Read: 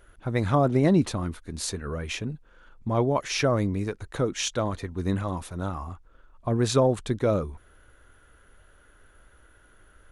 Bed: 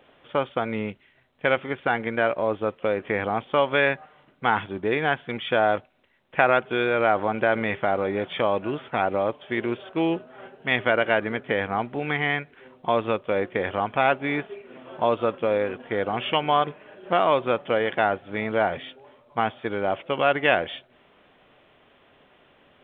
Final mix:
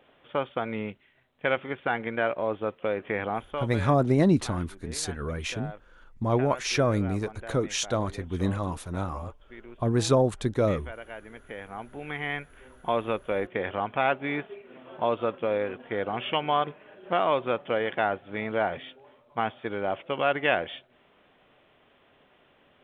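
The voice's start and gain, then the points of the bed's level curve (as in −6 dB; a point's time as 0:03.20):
3.35 s, −0.5 dB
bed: 0:03.33 −4 dB
0:03.88 −20 dB
0:11.11 −20 dB
0:12.58 −4 dB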